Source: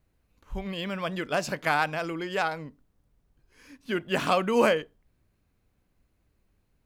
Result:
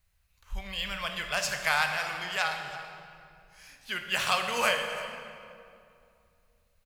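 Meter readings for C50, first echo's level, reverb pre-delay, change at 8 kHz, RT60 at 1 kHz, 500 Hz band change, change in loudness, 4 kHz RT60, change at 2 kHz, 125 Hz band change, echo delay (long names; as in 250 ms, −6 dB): 5.0 dB, −16.0 dB, 14 ms, +6.5 dB, 2.4 s, −8.5 dB, −1.5 dB, 1.6 s, +2.0 dB, −8.5 dB, 333 ms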